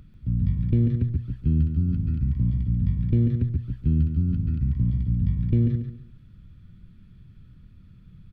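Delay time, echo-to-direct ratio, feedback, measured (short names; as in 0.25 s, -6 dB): 0.14 s, -7.5 dB, 26%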